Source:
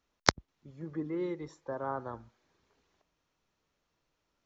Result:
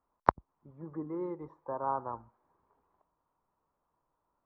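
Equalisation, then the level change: synth low-pass 1000 Hz, resonance Q 3.6; -3.5 dB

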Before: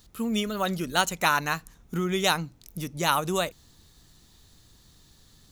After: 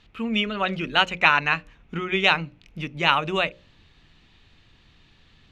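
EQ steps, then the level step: synth low-pass 2600 Hz, resonance Q 3.6; notches 60/120/180/240/300/360/420/480/540/600 Hz; notches 60/120/180 Hz; +1.5 dB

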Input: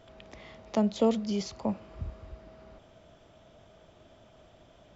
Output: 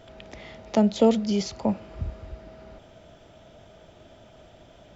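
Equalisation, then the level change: notch 1100 Hz, Q 7.9; +6.0 dB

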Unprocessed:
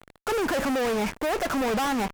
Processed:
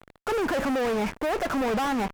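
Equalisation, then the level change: high shelf 3800 Hz -6.5 dB; 0.0 dB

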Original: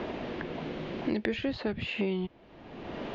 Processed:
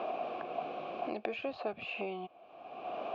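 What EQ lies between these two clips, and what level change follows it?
dynamic EQ 3000 Hz, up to -4 dB, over -50 dBFS, Q 1.7; vowel filter a; high shelf 5300 Hz +7 dB; +10.0 dB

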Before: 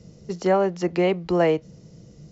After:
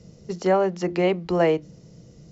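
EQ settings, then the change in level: notches 50/100/150/200/250/300/350 Hz; 0.0 dB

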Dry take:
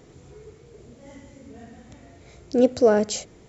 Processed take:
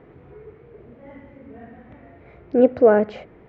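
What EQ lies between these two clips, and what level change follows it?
LPF 2200 Hz 24 dB/oct; low shelf 240 Hz -5.5 dB; +4.5 dB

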